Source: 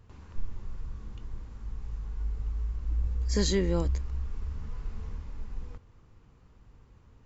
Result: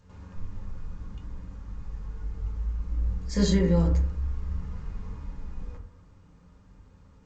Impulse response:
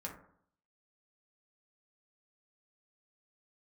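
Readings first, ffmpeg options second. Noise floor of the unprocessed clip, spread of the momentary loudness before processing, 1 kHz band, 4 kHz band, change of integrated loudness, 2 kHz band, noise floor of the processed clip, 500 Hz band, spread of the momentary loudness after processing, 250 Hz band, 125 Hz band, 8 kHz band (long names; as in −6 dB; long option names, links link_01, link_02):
−58 dBFS, 18 LU, +2.5 dB, −1.5 dB, +5.0 dB, +0.5 dB, −56 dBFS, +1.5 dB, 20 LU, +6.5 dB, +4.5 dB, can't be measured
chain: -filter_complex "[1:a]atrim=start_sample=2205[link_01];[0:a][link_01]afir=irnorm=-1:irlink=0,volume=3dB" -ar 16000 -c:a g722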